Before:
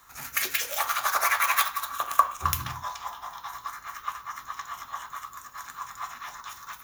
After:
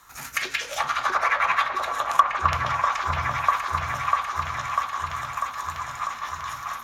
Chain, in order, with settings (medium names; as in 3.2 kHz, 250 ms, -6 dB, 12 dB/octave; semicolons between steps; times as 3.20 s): low-pass that closes with the level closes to 2.8 kHz, closed at -21.5 dBFS; delay with an opening low-pass 646 ms, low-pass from 750 Hz, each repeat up 1 oct, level 0 dB; hard clipper -8.5 dBFS, distortion -26 dB; trim +3 dB